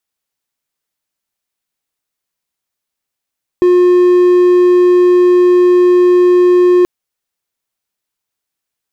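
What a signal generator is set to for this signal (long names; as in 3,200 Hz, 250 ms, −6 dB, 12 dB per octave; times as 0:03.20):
tone triangle 358 Hz −3 dBFS 3.23 s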